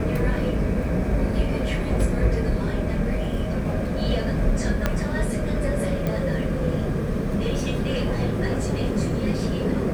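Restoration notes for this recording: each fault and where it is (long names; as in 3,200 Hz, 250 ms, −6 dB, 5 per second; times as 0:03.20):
0:04.86: click −8 dBFS
0:06.07: click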